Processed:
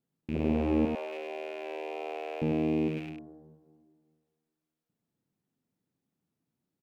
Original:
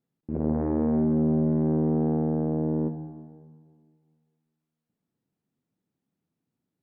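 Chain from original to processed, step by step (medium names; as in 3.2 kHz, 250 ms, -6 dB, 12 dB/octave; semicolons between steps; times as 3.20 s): rattle on loud lows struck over -38 dBFS, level -32 dBFS; 0.85–2.42 s: steep high-pass 480 Hz 36 dB/octave; delay 100 ms -5.5 dB; trim -2 dB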